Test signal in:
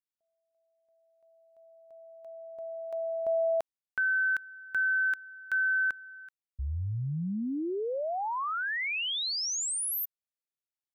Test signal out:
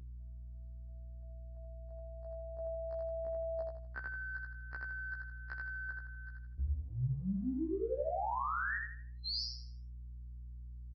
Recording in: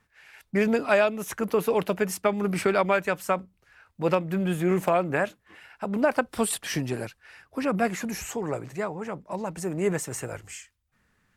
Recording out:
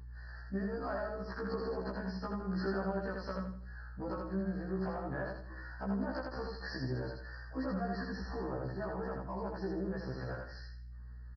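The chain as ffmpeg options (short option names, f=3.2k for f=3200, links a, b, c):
-filter_complex "[0:a]afftfilt=real='re*(1-between(b*sr/4096,1900,4100))':imag='im*(1-between(b*sr/4096,1900,4100))':win_size=4096:overlap=0.75,adynamicequalizer=threshold=0.00447:dfrequency=2200:dqfactor=2.1:tfrequency=2200:tqfactor=2.1:attack=5:release=100:ratio=0.3:range=2.5:mode=cutabove:tftype=bell,acompressor=threshold=-36dB:ratio=6:attack=3:release=79:knee=1:detection=peak,aeval=exprs='val(0)+0.00251*(sin(2*PI*60*n/s)+sin(2*PI*2*60*n/s)/2+sin(2*PI*3*60*n/s)/3+sin(2*PI*4*60*n/s)/4+sin(2*PI*5*60*n/s)/5)':c=same,asplit=2[a][b];[b]aecho=0:1:81|162|243|324|405:0.708|0.248|0.0867|0.0304|0.0106[c];[a][c]amix=inputs=2:normalize=0,aresample=11025,aresample=44100,afftfilt=real='re*1.73*eq(mod(b,3),0)':imag='im*1.73*eq(mod(b,3),0)':win_size=2048:overlap=0.75,volume=1.5dB"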